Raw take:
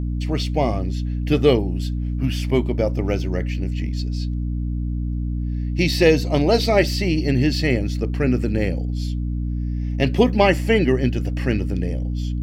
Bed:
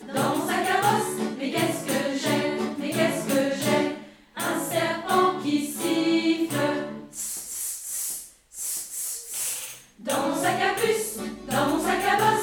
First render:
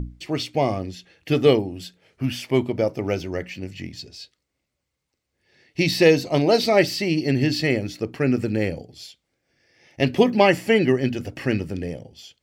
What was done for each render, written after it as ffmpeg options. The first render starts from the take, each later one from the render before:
ffmpeg -i in.wav -af "bandreject=frequency=60:width_type=h:width=6,bandreject=frequency=120:width_type=h:width=6,bandreject=frequency=180:width_type=h:width=6,bandreject=frequency=240:width_type=h:width=6,bandreject=frequency=300:width_type=h:width=6" out.wav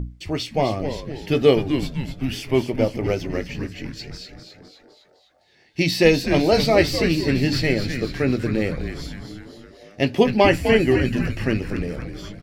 ffmpeg -i in.wav -filter_complex "[0:a]asplit=2[link_01][link_02];[link_02]adelay=18,volume=-13dB[link_03];[link_01][link_03]amix=inputs=2:normalize=0,asplit=8[link_04][link_05][link_06][link_07][link_08][link_09][link_10][link_11];[link_05]adelay=254,afreqshift=-140,volume=-7.5dB[link_12];[link_06]adelay=508,afreqshift=-280,volume=-12.4dB[link_13];[link_07]adelay=762,afreqshift=-420,volume=-17.3dB[link_14];[link_08]adelay=1016,afreqshift=-560,volume=-22.1dB[link_15];[link_09]adelay=1270,afreqshift=-700,volume=-27dB[link_16];[link_10]adelay=1524,afreqshift=-840,volume=-31.9dB[link_17];[link_11]adelay=1778,afreqshift=-980,volume=-36.8dB[link_18];[link_04][link_12][link_13][link_14][link_15][link_16][link_17][link_18]amix=inputs=8:normalize=0" out.wav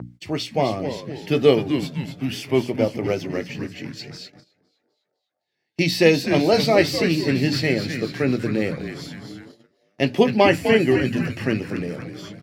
ffmpeg -i in.wav -af "agate=range=-20dB:threshold=-39dB:ratio=16:detection=peak,highpass=frequency=110:width=0.5412,highpass=frequency=110:width=1.3066" out.wav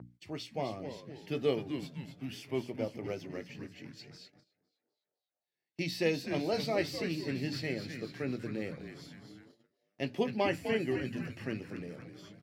ffmpeg -i in.wav -af "volume=-15dB" out.wav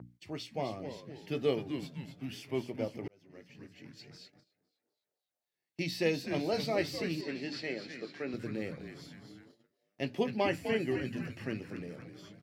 ffmpeg -i in.wav -filter_complex "[0:a]asettb=1/sr,asplit=3[link_01][link_02][link_03];[link_01]atrim=end=7.214[link_04];[link_02]atrim=start=7.21:end=8.34,asetpts=PTS-STARTPTS,afade=type=in:duration=0.004:curve=qsin,afade=type=out:start_time=1.126:duration=0.004:curve=qsin,highpass=280,lowpass=6100[link_05];[link_03]atrim=start=8.336[link_06];[link_04][link_05]acrossfade=duration=0.004:curve1=hsin:curve2=qsin[link_07];[link_07][link_06]acrossfade=duration=0.004:curve1=qsin:curve2=hsin,asplit=2[link_08][link_09];[link_08]atrim=end=3.08,asetpts=PTS-STARTPTS,afade=type=out:start_time=3.076:duration=0.004:curve=hsin[link_10];[link_09]atrim=start=3.08,asetpts=PTS-STARTPTS,afade=type=in:duration=1.13[link_11];[link_10][link_11]concat=n=2:v=0:a=1" out.wav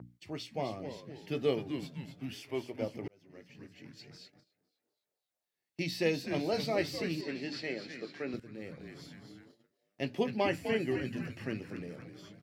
ffmpeg -i in.wav -filter_complex "[0:a]asettb=1/sr,asplit=3[link_01][link_02][link_03];[link_01]atrim=end=2.334[link_04];[link_02]atrim=start=2.33:end=2.82,asetpts=PTS-STARTPTS,afade=type=in:duration=0.004:curve=qsin,afade=type=out:start_time=0.486:duration=0.004:curve=qsin,equalizer=frequency=170:width_type=o:width=0.77:gain=-13[link_05];[link_03]atrim=start=2.816[link_06];[link_04][link_05]acrossfade=duration=0.004:curve1=hsin:curve2=qsin[link_07];[link_07][link_06]acrossfade=duration=0.004:curve1=qsin:curve2=hsin,asplit=2[link_08][link_09];[link_08]atrim=end=8.4,asetpts=PTS-STARTPTS,afade=type=out:start_time=8.396:duration=0.004:curve=hsin:silence=0.16788[link_10];[link_09]atrim=start=8.4,asetpts=PTS-STARTPTS,afade=type=in:duration=0.61:silence=0.16788[link_11];[link_10][link_11]concat=n=2:v=0:a=1" out.wav

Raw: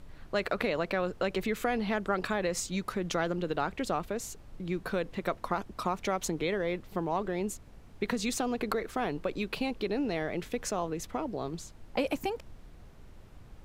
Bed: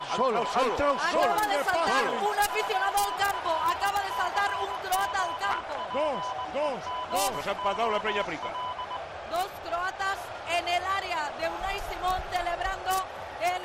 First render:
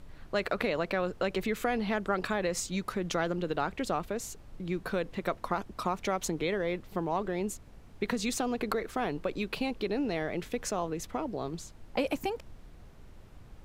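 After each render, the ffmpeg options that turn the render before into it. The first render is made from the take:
ffmpeg -i in.wav -af anull out.wav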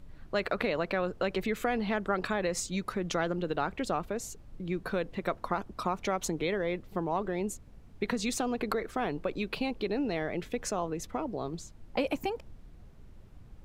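ffmpeg -i in.wav -af "afftdn=noise_reduction=6:noise_floor=-52" out.wav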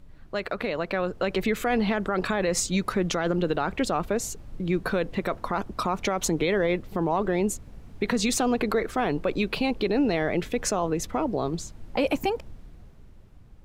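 ffmpeg -i in.wav -af "dynaudnorm=framelen=180:gausssize=13:maxgain=8.5dB,alimiter=limit=-14.5dB:level=0:latency=1:release=25" out.wav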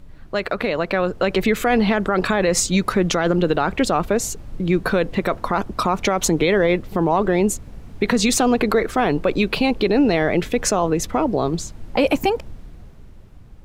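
ffmpeg -i in.wav -af "volume=7dB" out.wav

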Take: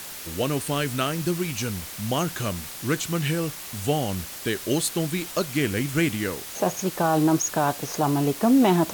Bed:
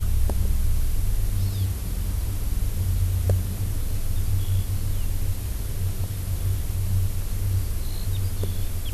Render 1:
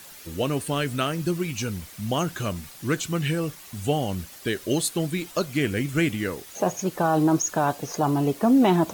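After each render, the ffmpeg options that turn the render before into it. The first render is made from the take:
ffmpeg -i in.wav -af "afftdn=noise_reduction=9:noise_floor=-38" out.wav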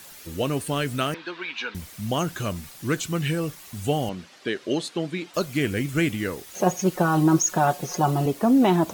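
ffmpeg -i in.wav -filter_complex "[0:a]asettb=1/sr,asplit=3[link_01][link_02][link_03];[link_01]atrim=end=1.144[link_04];[link_02]atrim=start=1.14:end=1.75,asetpts=PTS-STARTPTS,afade=type=in:duration=0.004:curve=qsin,afade=type=out:start_time=0.606:duration=0.004:curve=qsin,highpass=frequency=350:width=0.5412,highpass=frequency=350:width=1.3066,equalizer=frequency=370:width_type=q:width=4:gain=-8,equalizer=frequency=580:width_type=q:width=4:gain=-6,equalizer=frequency=960:width_type=q:width=4:gain=8,equalizer=frequency=1600:width_type=q:width=4:gain=10,equalizer=frequency=2400:width_type=q:width=4:gain=4,equalizer=frequency=3700:width_type=q:width=4:gain=8,lowpass=frequency=4000:width=0.5412,lowpass=frequency=4000:width=1.3066[link_05];[link_03]atrim=start=1.746[link_06];[link_04][link_05]acrossfade=duration=0.004:curve1=hsin:curve2=qsin[link_07];[link_07][link_06]acrossfade=duration=0.004:curve1=qsin:curve2=hsin,asettb=1/sr,asplit=3[link_08][link_09][link_10];[link_08]atrim=end=4.094[link_11];[link_09]atrim=start=4.09:end=5.34,asetpts=PTS-STARTPTS,afade=type=in:duration=0.004:curve=qsin,afade=type=out:start_time=1.246:duration=0.004:curve=qsin,highpass=200,lowpass=4400[link_12];[link_10]atrim=start=5.336[link_13];[link_11][link_12]acrossfade=duration=0.004:curve1=hsin:curve2=qsin[link_14];[link_14][link_13]acrossfade=duration=0.004:curve1=qsin:curve2=hsin,asettb=1/sr,asplit=3[link_15][link_16][link_17];[link_15]atrim=end=6.534[link_18];[link_16]atrim=start=6.53:end=8.26,asetpts=PTS-STARTPTS,afade=type=in:duration=0.004:curve=qsin,afade=type=out:start_time=1.726:duration=0.004:curve=qsin,aecho=1:1:5.5:0.79,atrim=end_sample=76293[link_19];[link_17]atrim=start=8.256[link_20];[link_18][link_19]acrossfade=duration=0.004:curve1=hsin:curve2=qsin[link_21];[link_21][link_20]acrossfade=duration=0.004:curve1=qsin:curve2=hsin" out.wav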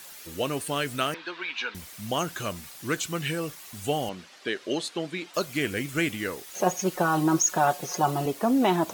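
ffmpeg -i in.wav -af "lowshelf=frequency=280:gain=-10" out.wav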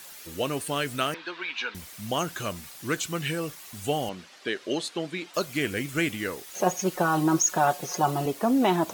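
ffmpeg -i in.wav -af anull out.wav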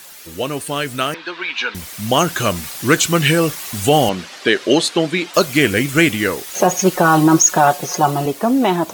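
ffmpeg -i in.wav -af "dynaudnorm=framelen=540:gausssize=7:maxgain=11.5dB,alimiter=level_in=6dB:limit=-1dB:release=50:level=0:latency=1" out.wav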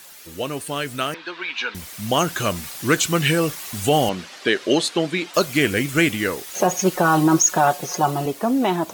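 ffmpeg -i in.wav -af "volume=-4.5dB" out.wav

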